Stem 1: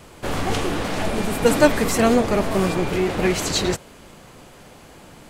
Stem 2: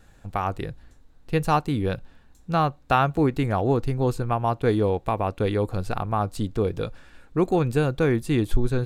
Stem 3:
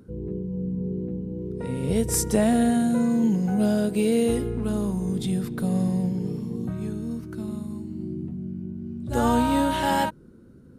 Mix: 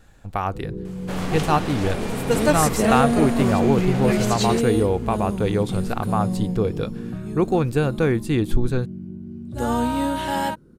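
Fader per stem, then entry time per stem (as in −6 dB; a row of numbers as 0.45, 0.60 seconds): −4.5, +1.5, −1.0 decibels; 0.85, 0.00, 0.45 seconds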